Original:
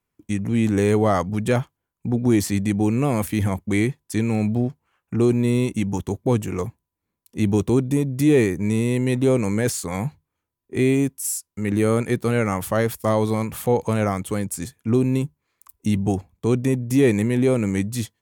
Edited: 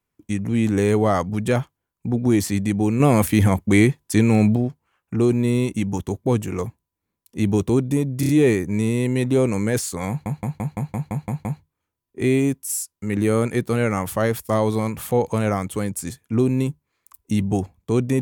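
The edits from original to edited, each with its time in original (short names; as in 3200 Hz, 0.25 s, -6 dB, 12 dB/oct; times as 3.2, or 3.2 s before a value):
3–4.56 gain +5.5 dB
8.2 stutter 0.03 s, 4 plays
10 stutter 0.17 s, 9 plays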